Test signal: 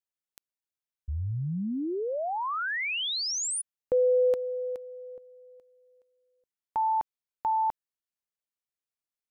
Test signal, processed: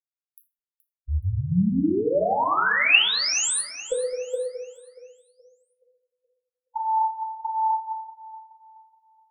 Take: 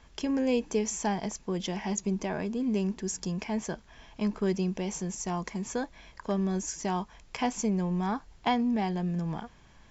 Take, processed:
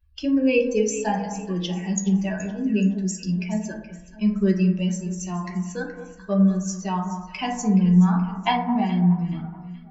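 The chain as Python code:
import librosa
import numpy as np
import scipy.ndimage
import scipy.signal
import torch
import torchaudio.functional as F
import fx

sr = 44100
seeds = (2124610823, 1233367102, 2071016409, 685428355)

y = fx.bin_expand(x, sr, power=2.0)
y = fx.peak_eq(y, sr, hz=2700.0, db=12.0, octaves=0.22)
y = fx.hum_notches(y, sr, base_hz=50, count=4)
y = fx.echo_alternate(y, sr, ms=212, hz=1400.0, feedback_pct=59, wet_db=-10.0)
y = fx.rev_fdn(y, sr, rt60_s=0.77, lf_ratio=0.85, hf_ratio=0.35, size_ms=31.0, drr_db=-0.5)
y = y * librosa.db_to_amplitude(6.0)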